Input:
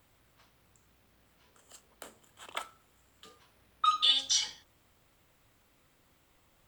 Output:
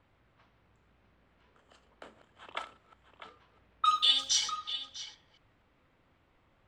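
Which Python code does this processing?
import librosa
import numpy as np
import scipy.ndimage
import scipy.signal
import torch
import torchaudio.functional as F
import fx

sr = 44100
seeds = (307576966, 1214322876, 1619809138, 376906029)

y = fx.reverse_delay(x, sr, ms=163, wet_db=-13.5)
y = y + 10.0 ** (-11.5 / 20.0) * np.pad(y, (int(648 * sr / 1000.0), 0))[:len(y)]
y = fx.env_lowpass(y, sr, base_hz=2500.0, full_db=-25.5)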